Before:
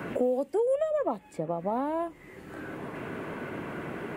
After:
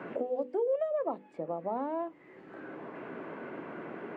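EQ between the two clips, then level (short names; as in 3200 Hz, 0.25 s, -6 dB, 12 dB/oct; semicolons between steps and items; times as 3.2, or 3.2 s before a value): HPF 240 Hz 12 dB/oct; tape spacing loss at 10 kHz 29 dB; notches 50/100/150/200/250/300/350/400/450/500 Hz; -1.5 dB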